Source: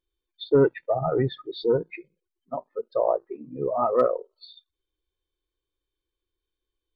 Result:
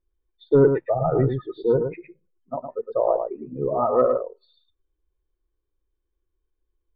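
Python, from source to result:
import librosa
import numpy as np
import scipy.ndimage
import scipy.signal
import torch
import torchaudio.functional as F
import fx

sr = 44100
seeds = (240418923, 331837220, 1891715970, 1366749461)

p1 = scipy.signal.sosfilt(scipy.signal.butter(2, 1500.0, 'lowpass', fs=sr, output='sos'), x)
p2 = fx.low_shelf(p1, sr, hz=84.0, db=11.0)
p3 = p2 + fx.echo_single(p2, sr, ms=110, db=-6.5, dry=0)
y = F.gain(torch.from_numpy(p3), 1.5).numpy()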